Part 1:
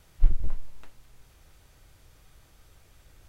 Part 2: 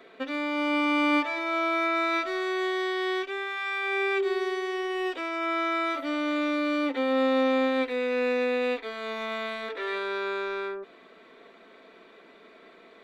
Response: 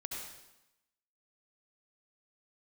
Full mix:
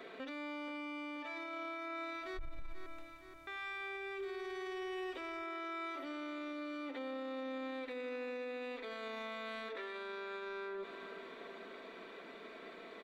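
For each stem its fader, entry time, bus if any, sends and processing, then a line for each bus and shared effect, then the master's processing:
-10.5 dB, 2.15 s, no send, no echo send, dry
+1.0 dB, 0.00 s, muted 2.39–3.47, no send, echo send -15 dB, compressor, threshold -36 dBFS, peak gain reduction 15 dB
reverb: off
echo: feedback echo 0.475 s, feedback 55%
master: limiter -36.5 dBFS, peak gain reduction 19.5 dB

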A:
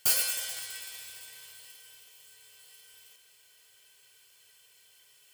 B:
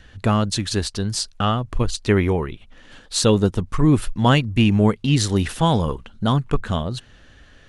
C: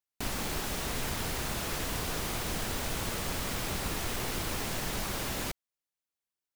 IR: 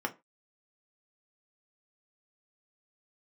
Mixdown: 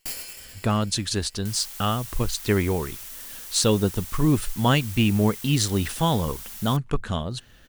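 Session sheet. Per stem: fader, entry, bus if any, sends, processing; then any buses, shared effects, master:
-6.5 dB, 0.00 s, no send, minimum comb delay 0.4 ms
-4.5 dB, 0.40 s, no send, high shelf 4200 Hz +6 dB
-3.5 dB, 1.25 s, send -10.5 dB, differentiator; upward compressor, threshold -42 dBFS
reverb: on, RT60 0.25 s, pre-delay 3 ms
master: dry

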